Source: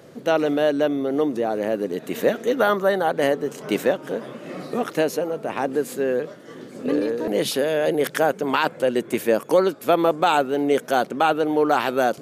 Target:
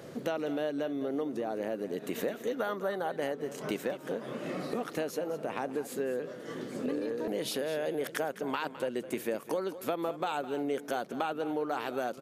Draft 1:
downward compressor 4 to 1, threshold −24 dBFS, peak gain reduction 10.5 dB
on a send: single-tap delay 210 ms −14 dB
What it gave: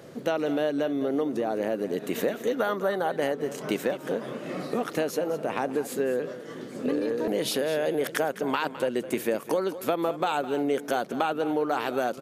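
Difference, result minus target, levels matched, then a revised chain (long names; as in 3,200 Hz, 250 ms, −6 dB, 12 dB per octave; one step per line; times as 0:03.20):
downward compressor: peak gain reduction −6.5 dB
downward compressor 4 to 1, threshold −32.5 dBFS, peak gain reduction 17 dB
on a send: single-tap delay 210 ms −14 dB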